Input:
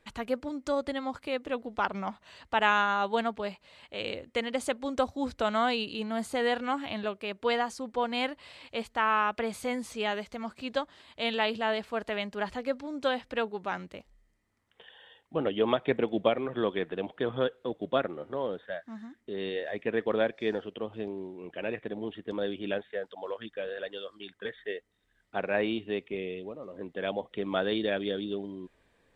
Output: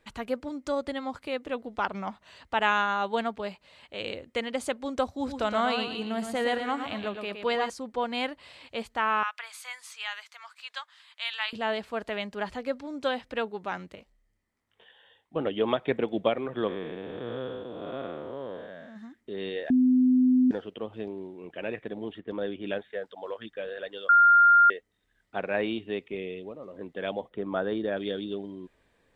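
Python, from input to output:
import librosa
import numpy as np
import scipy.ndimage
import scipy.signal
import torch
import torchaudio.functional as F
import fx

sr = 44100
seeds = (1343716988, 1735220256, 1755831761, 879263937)

y = fx.echo_feedback(x, sr, ms=116, feedback_pct=36, wet_db=-7, at=(5.08, 7.7))
y = fx.highpass(y, sr, hz=1100.0, slope=24, at=(9.23, 11.53))
y = fx.detune_double(y, sr, cents=43, at=(13.95, 15.36))
y = fx.spec_blur(y, sr, span_ms=311.0, at=(16.67, 18.95), fade=0.02)
y = fx.lowpass(y, sr, hz=3000.0, slope=12, at=(22.19, 22.66))
y = fx.band_shelf(y, sr, hz=4200.0, db=-11.0, octaves=2.3, at=(27.28, 27.96), fade=0.02)
y = fx.edit(y, sr, fx.bleep(start_s=19.7, length_s=0.81, hz=254.0, db=-17.5),
    fx.bleep(start_s=24.09, length_s=0.61, hz=1400.0, db=-14.0), tone=tone)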